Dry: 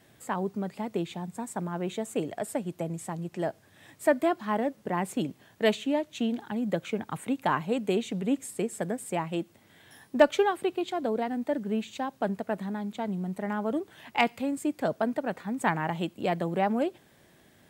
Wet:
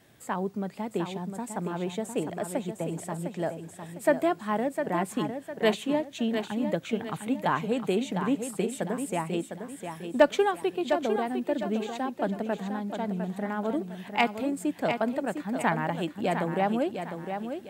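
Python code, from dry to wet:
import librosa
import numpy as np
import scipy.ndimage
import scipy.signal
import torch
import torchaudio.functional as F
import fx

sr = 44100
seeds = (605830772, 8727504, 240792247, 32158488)

y = fx.echo_feedback(x, sr, ms=705, feedback_pct=36, wet_db=-7.5)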